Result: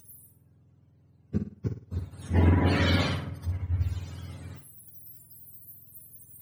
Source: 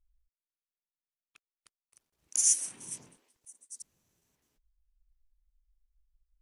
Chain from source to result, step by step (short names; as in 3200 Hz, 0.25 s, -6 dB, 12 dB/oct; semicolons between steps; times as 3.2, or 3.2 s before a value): spectrum mirrored in octaves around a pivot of 730 Hz; flutter echo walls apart 9.2 m, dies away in 0.39 s; spectral compressor 4:1; gain +1.5 dB